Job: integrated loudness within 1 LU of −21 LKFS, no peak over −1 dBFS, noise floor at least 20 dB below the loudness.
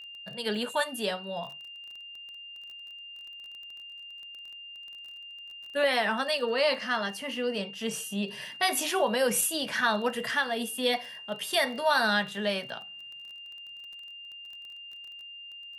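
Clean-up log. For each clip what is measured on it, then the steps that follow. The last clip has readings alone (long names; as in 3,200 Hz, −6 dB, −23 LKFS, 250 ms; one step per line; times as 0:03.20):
crackle rate 22 per second; interfering tone 2,800 Hz; level of the tone −42 dBFS; integrated loudness −28.5 LKFS; sample peak −12.0 dBFS; target loudness −21.0 LKFS
→ click removal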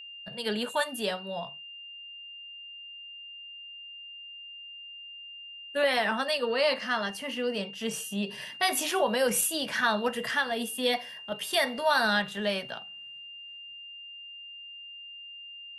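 crackle rate 0 per second; interfering tone 2,800 Hz; level of the tone −42 dBFS
→ notch filter 2,800 Hz, Q 30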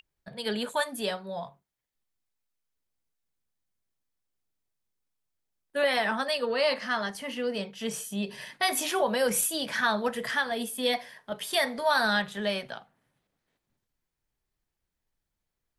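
interfering tone none found; integrated loudness −28.5 LKFS; sample peak −12.0 dBFS; target loudness −21.0 LKFS
→ level +7.5 dB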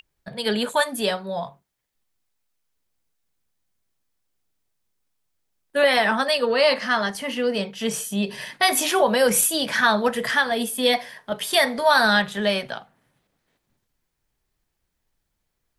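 integrated loudness −21.0 LKFS; sample peak −4.5 dBFS; background noise floor −77 dBFS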